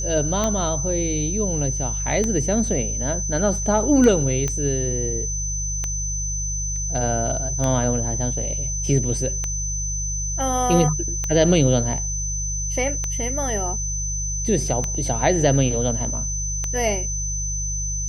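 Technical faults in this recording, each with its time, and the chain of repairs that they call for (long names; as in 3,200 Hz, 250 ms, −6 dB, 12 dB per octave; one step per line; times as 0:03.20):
mains hum 50 Hz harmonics 3 −28 dBFS
scratch tick 33 1/3 rpm −10 dBFS
whistle 6,100 Hz −26 dBFS
0:04.48: click −11 dBFS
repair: click removal
hum removal 50 Hz, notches 3
notch filter 6,100 Hz, Q 30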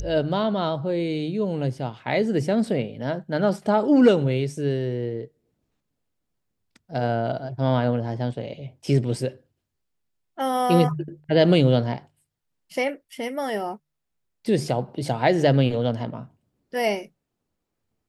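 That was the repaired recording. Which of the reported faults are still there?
none of them is left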